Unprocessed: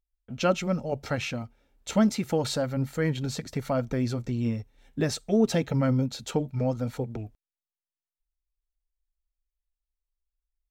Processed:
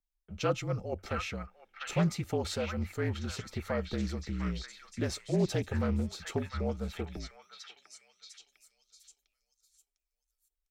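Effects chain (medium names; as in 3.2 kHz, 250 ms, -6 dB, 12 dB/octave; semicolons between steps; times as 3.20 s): repeats whose band climbs or falls 702 ms, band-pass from 1.7 kHz, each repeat 0.7 oct, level -0.5 dB; frequency shift -47 Hz; loudspeaker Doppler distortion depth 0.21 ms; trim -6 dB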